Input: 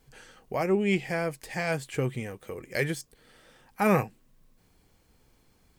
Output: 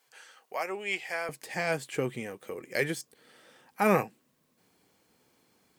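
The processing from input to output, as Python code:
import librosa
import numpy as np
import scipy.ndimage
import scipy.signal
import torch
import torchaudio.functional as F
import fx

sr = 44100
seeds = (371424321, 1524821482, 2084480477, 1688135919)

y = fx.highpass(x, sr, hz=fx.steps((0.0, 760.0), (1.29, 200.0)), slope=12)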